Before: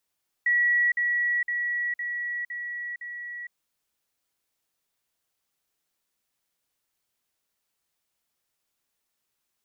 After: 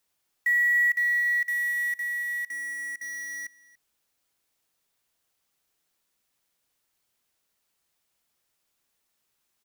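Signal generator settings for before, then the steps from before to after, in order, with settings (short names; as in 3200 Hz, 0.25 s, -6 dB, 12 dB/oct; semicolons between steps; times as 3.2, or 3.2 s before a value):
level ladder 1930 Hz -19 dBFS, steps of -3 dB, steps 6, 0.46 s 0.05 s
in parallel at -7 dB: wrapped overs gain 35 dB; on the sum: echo 0.286 s -21 dB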